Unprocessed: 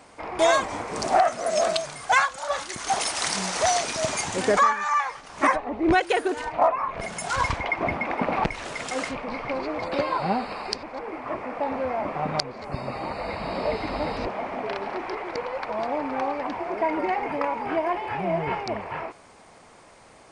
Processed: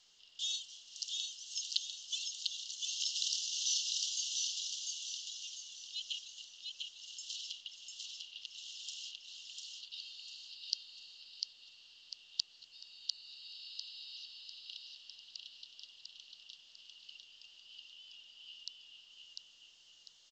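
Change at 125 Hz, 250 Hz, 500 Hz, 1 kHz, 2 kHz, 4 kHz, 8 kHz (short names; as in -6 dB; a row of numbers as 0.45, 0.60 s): under -40 dB, under -40 dB, under -40 dB, under -40 dB, -27.5 dB, -3.0 dB, -6.5 dB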